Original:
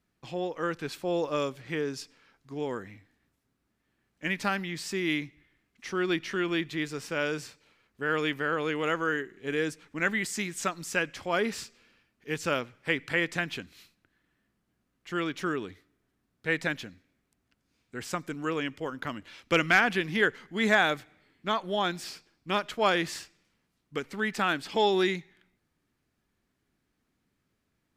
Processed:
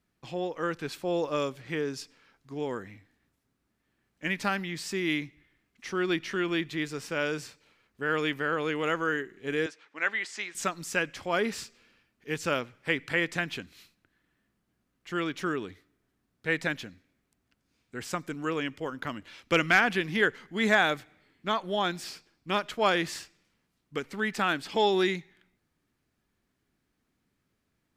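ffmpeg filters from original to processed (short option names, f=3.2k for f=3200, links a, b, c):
-filter_complex "[0:a]asettb=1/sr,asplit=3[a][b][c];[a]atrim=end=9.664[d];[b]atrim=start=9.66:end=10.55,asetpts=PTS-STARTPTS,afade=t=in:d=0.004:c=qsin,afade=t=out:st=0.886:d=0.004:c=qsin,highpass=590,lowpass=4.6k[e];[c]atrim=start=10.546[f];[d][e]acrossfade=d=0.004:c1=hsin:c2=qsin[g];[g][f]acrossfade=d=0.004:c1=qsin:c2=hsin"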